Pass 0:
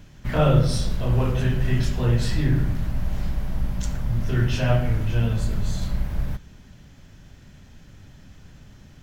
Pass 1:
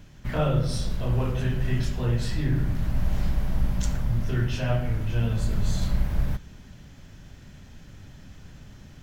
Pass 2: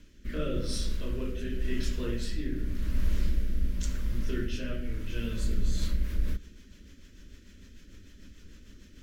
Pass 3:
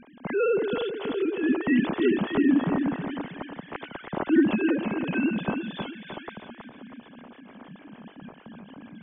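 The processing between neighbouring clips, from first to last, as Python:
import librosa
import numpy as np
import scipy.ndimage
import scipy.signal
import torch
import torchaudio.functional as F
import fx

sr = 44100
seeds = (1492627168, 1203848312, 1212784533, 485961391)

y1 = fx.rider(x, sr, range_db=4, speed_s=0.5)
y1 = y1 * 10.0 ** (-3.0 / 20.0)
y2 = fx.fixed_phaser(y1, sr, hz=320.0, stages=4)
y2 = fx.rotary_switch(y2, sr, hz=0.9, then_hz=6.7, switch_at_s=5.45)
y3 = fx.sine_speech(y2, sr)
y3 = fx.echo_feedback(y3, sr, ms=321, feedback_pct=38, wet_db=-6.5)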